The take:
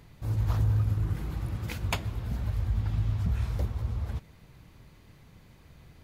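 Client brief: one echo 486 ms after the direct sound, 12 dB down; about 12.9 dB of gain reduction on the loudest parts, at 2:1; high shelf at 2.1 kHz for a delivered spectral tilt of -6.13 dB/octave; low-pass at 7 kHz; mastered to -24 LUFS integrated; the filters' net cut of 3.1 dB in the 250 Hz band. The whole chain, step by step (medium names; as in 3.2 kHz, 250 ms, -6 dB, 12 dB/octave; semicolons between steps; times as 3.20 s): low-pass 7 kHz; peaking EQ 250 Hz -5.5 dB; treble shelf 2.1 kHz +3.5 dB; compression 2:1, threshold -47 dBFS; delay 486 ms -12 dB; trim +18.5 dB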